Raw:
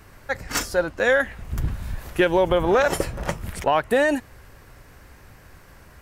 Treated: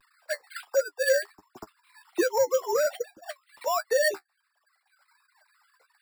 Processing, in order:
three sine waves on the formant tracks
reverb reduction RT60 1.6 s
in parallel at 0 dB: downward compressor, threshold −26 dBFS, peak gain reduction 15 dB
on the sum: pitch vibrato 0.34 Hz 22 cents
flanger 1.3 Hz, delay 7.5 ms, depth 6.5 ms, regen +31%
decimation without filtering 7×
soft clipping −10.5 dBFS, distortion −22 dB
level −3 dB

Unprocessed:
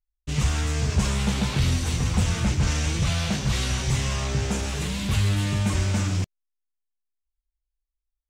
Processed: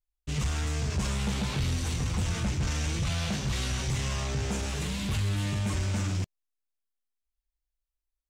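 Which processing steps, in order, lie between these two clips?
in parallel at −1 dB: brickwall limiter −19 dBFS, peak gain reduction 8.5 dB
on the sum: soft clipping −13 dBFS, distortion −20 dB
level −8.5 dB

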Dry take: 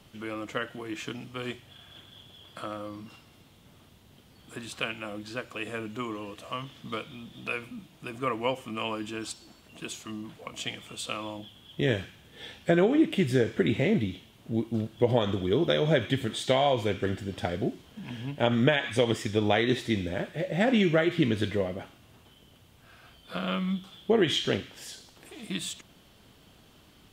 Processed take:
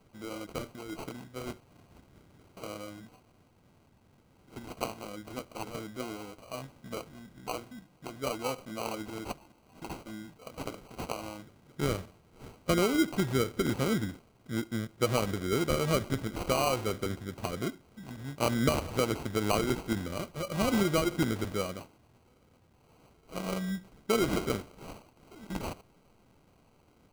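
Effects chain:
dynamic equaliser 7,000 Hz, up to +6 dB, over −50 dBFS, Q 0.71
in parallel at −10.5 dB: slack as between gear wheels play −37 dBFS
on the sum: decimation without filtering 25×
level −6.5 dB

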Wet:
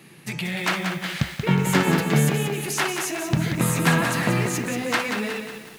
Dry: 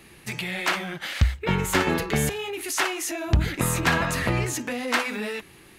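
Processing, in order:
low shelf with overshoot 100 Hz −13.5 dB, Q 3
feedback echo at a low word length 182 ms, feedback 55%, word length 7 bits, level −6 dB

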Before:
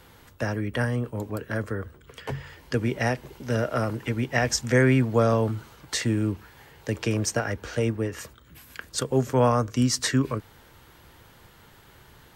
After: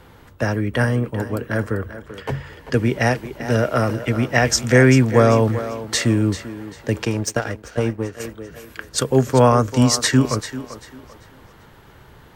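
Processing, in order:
feedback echo with a high-pass in the loop 392 ms, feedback 37%, high-pass 260 Hz, level −11 dB
0:07.05–0:08.20: power curve on the samples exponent 1.4
one half of a high-frequency compander decoder only
level +7 dB

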